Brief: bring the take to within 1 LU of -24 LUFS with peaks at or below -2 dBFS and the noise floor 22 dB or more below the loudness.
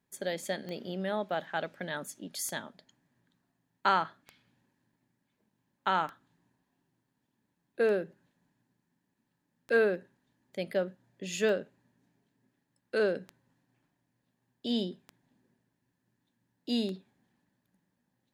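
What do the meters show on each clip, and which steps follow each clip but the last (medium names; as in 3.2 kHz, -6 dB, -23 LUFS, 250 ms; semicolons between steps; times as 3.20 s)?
clicks found 10; loudness -32.5 LUFS; peak level -12.0 dBFS; loudness target -24.0 LUFS
-> de-click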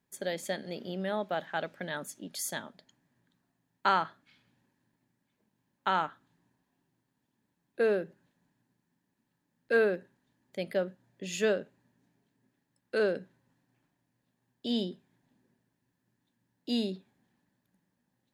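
clicks found 0; loudness -32.5 LUFS; peak level -12.0 dBFS; loudness target -24.0 LUFS
-> trim +8.5 dB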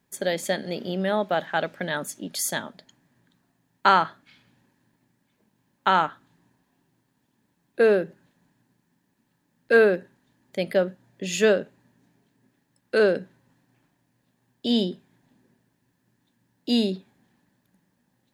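loudness -24.5 LUFS; peak level -3.5 dBFS; noise floor -72 dBFS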